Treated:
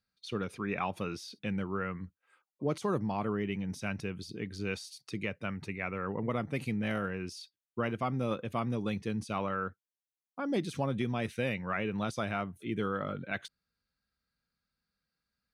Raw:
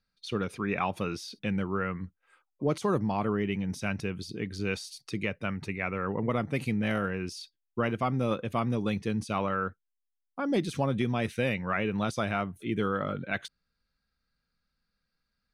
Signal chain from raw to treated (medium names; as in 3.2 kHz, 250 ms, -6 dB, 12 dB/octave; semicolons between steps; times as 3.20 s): high-pass 53 Hz; trim -4 dB